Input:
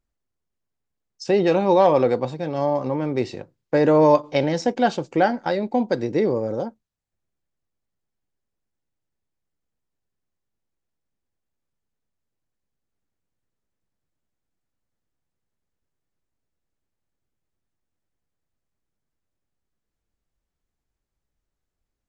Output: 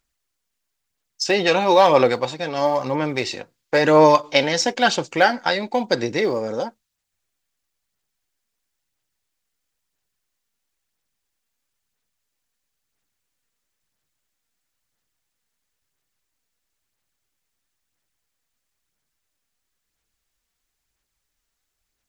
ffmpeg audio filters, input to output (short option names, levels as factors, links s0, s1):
-af "aphaser=in_gain=1:out_gain=1:delay=4.4:decay=0.32:speed=1:type=sinusoidal,tiltshelf=f=970:g=-8.5,volume=1.68"